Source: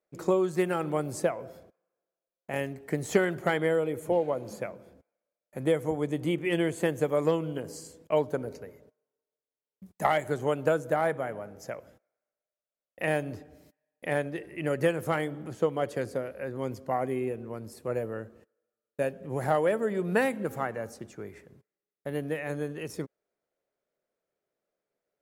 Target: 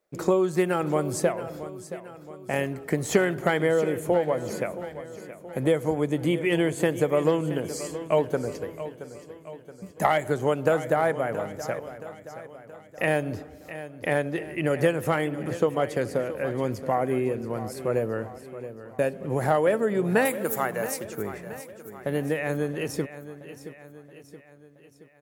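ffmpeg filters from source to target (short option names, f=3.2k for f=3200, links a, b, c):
-filter_complex "[0:a]asettb=1/sr,asplit=3[a][b][c];[a]atrim=end=20.254[d];[b]atrim=start=20.25:end=21.05,asetpts=PTS-STARTPTS,afade=t=in:d=0.004:c=qsin,afade=t=out:st=0.796:d=0.004:c=qsin,aemphasis=mode=production:type=bsi[e];[c]atrim=start=21.046[f];[d][e]acrossfade=d=0.004:c1=hsin:c2=qsin[g];[g][f]acrossfade=d=0.004:c1=qsin:c2=hsin,asplit=2[h][i];[i]acompressor=threshold=-32dB:ratio=6,volume=3dB[j];[h][j]amix=inputs=2:normalize=0,aecho=1:1:674|1348|2022|2696|3370:0.211|0.11|0.0571|0.0297|0.0155"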